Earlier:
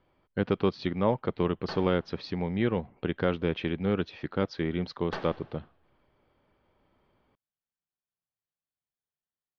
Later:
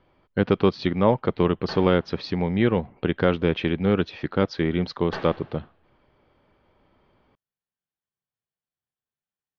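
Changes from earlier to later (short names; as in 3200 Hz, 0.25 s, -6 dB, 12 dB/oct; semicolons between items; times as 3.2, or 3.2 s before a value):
speech +6.5 dB; background: send +7.5 dB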